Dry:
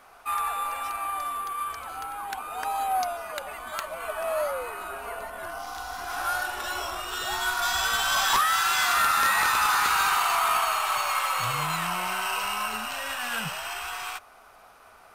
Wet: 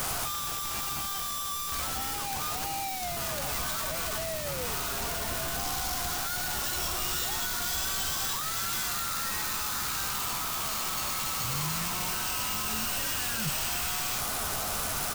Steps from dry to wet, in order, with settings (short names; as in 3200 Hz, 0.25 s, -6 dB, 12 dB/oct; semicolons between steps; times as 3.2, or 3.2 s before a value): infinite clipping; tone controls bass +11 dB, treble +10 dB; doubler 14 ms -11 dB; gain -8.5 dB